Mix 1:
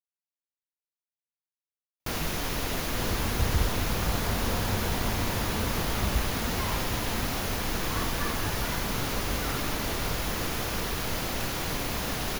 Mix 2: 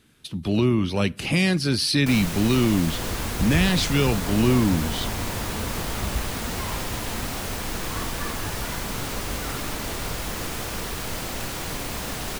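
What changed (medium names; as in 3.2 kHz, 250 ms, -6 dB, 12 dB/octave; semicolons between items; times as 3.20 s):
speech: unmuted; master: add peaking EQ 8.2 kHz +10.5 dB 0.23 oct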